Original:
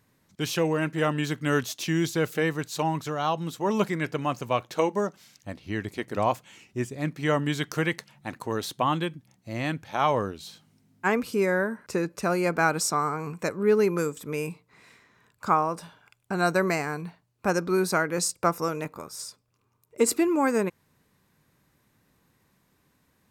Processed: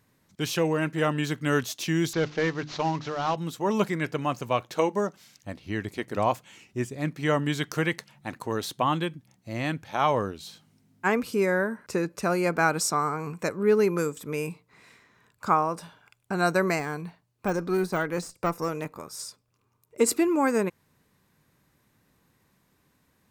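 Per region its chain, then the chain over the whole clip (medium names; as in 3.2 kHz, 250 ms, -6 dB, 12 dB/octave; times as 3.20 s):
2.13–3.36 s: CVSD coder 32 kbps + hum notches 50/100/150/200/250/300 Hz
16.79–19.08 s: band-stop 1.4 kHz, Q 26 + valve stage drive 15 dB, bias 0.3 + de-esser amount 90%
whole clip: none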